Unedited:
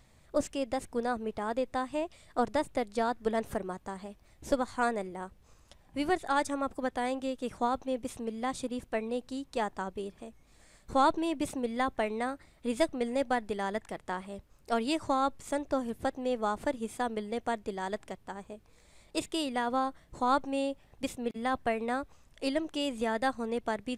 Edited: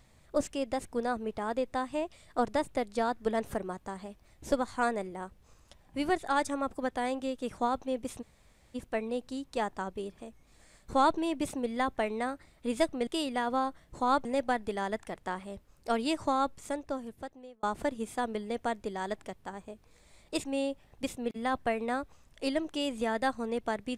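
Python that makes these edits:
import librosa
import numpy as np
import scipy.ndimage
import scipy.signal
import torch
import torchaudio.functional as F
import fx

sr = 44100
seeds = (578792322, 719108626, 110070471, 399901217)

y = fx.edit(x, sr, fx.room_tone_fill(start_s=8.22, length_s=0.53, crossfade_s=0.02),
    fx.fade_out_span(start_s=15.23, length_s=1.22),
    fx.move(start_s=19.27, length_s=1.18, to_s=13.07), tone=tone)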